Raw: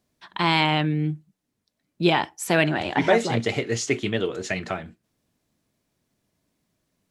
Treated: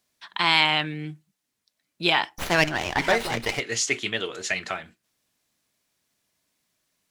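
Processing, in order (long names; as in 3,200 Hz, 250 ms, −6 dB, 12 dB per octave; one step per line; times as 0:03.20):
tilt shelving filter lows −8 dB, about 720 Hz
0:02.38–0:03.60: windowed peak hold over 5 samples
level −3 dB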